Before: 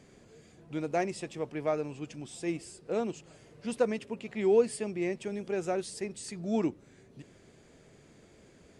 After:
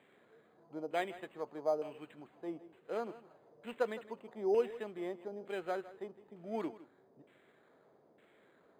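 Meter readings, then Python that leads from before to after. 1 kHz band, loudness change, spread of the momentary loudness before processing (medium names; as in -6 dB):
-3.5 dB, -6.5 dB, 13 LU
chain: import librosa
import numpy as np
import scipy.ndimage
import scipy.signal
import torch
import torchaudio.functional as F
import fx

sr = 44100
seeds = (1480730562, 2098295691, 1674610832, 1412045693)

p1 = fx.weighting(x, sr, curve='A')
p2 = fx.filter_lfo_lowpass(p1, sr, shape='saw_down', hz=1.1, low_hz=660.0, high_hz=2800.0, q=1.5)
p3 = p2 + fx.echo_single(p2, sr, ms=160, db=-16.5, dry=0)
p4 = np.interp(np.arange(len(p3)), np.arange(len(p3))[::8], p3[::8])
y = F.gain(torch.from_numpy(p4), -3.5).numpy()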